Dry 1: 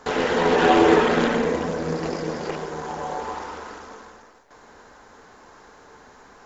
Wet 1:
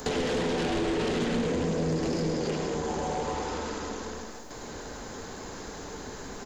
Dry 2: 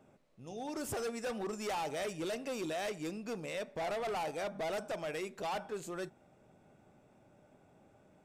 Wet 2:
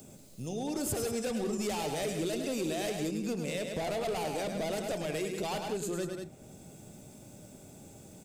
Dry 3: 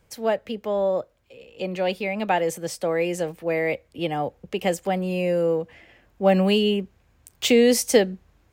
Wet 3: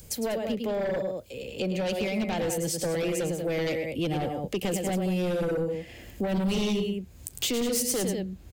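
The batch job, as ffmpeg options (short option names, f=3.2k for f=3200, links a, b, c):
-filter_complex "[0:a]bandreject=f=5.6k:w=16,acrossover=split=210|4600[a][b][c];[c]acompressor=mode=upward:threshold=-60dB:ratio=2.5[d];[a][b][d]amix=inputs=3:normalize=0,alimiter=limit=-15dB:level=0:latency=1:release=57,asplit=2[e][f];[f]aecho=0:1:105|189.5:0.447|0.316[g];[e][g]amix=inputs=2:normalize=0,aeval=exprs='0.282*sin(PI/2*2.51*val(0)/0.282)':c=same,equalizer=f=1.2k:t=o:w=2.5:g=-12,acompressor=threshold=-37dB:ratio=2,volume=2.5dB"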